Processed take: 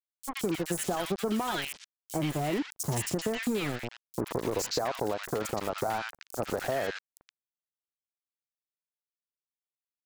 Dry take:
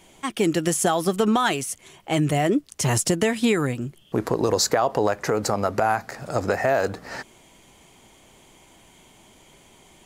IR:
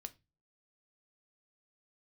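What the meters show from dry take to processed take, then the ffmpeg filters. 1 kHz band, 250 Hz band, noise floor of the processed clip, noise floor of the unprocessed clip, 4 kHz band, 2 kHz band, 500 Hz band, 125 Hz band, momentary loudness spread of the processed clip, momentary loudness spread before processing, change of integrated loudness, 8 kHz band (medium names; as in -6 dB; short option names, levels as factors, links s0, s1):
-10.0 dB, -9.5 dB, under -85 dBFS, -54 dBFS, -8.0 dB, -9.0 dB, -9.5 dB, -9.5 dB, 7 LU, 9 LU, -9.5 dB, -10.0 dB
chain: -filter_complex "[0:a]aeval=exprs='val(0)*gte(abs(val(0)),0.0708)':c=same,acrossover=split=1400|5500[s0][s1][s2];[s0]adelay=40[s3];[s1]adelay=120[s4];[s3][s4][s2]amix=inputs=3:normalize=0,acompressor=threshold=0.0501:ratio=2.5,volume=0.708"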